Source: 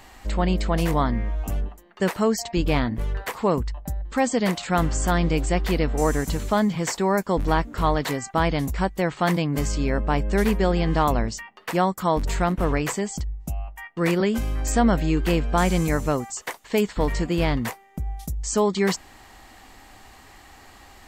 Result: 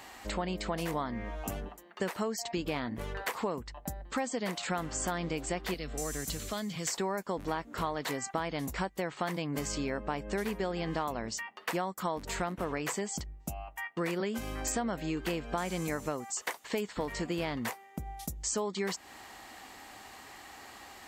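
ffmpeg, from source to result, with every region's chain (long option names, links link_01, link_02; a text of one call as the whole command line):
ffmpeg -i in.wav -filter_complex "[0:a]asettb=1/sr,asplit=3[link_01][link_02][link_03];[link_01]atrim=end=5.744[link_04];[link_02]atrim=start=5.74:end=6.93,asetpts=PTS-STARTPTS,afade=type=in:duration=0.004:curve=qsin,afade=type=out:start_time=1.186:duration=0.004:curve=qsin,bandreject=frequency=910:width=5.1,acrossover=split=120|3000[link_05][link_06][link_07];[link_06]acompressor=threshold=-51dB:ratio=1.5:attack=3.2:release=140:knee=2.83:detection=peak[link_08];[link_05][link_08][link_07]amix=inputs=3:normalize=0[link_09];[link_03]atrim=start=6.926[link_10];[link_04][link_09]acrossfade=duration=0.004:curve1=hsin:curve2=qsin[link_11];[link_11][link_10]acrossfade=duration=0.004:curve1=qsin:curve2=hsin,highpass=frequency=270:poles=1,acompressor=threshold=-31dB:ratio=5" out.wav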